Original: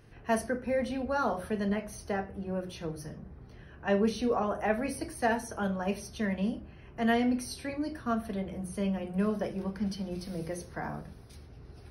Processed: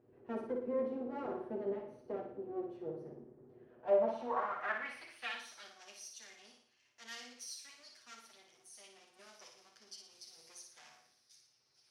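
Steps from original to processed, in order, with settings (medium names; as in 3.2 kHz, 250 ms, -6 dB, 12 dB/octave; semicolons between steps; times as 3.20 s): comb filter that takes the minimum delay 8.1 ms; flutter echo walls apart 9.8 m, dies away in 0.59 s; band-pass sweep 380 Hz -> 6 kHz, 3.56–5.86 s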